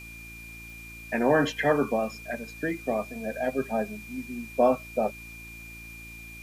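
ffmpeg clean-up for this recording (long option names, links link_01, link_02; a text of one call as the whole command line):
ffmpeg -i in.wav -af "adeclick=threshold=4,bandreject=frequency=56.7:width_type=h:width=4,bandreject=frequency=113.4:width_type=h:width=4,bandreject=frequency=170.1:width_type=h:width=4,bandreject=frequency=226.8:width_type=h:width=4,bandreject=frequency=283.5:width_type=h:width=4,bandreject=frequency=340.2:width_type=h:width=4,bandreject=frequency=2400:width=30,afwtdn=0.0022" out.wav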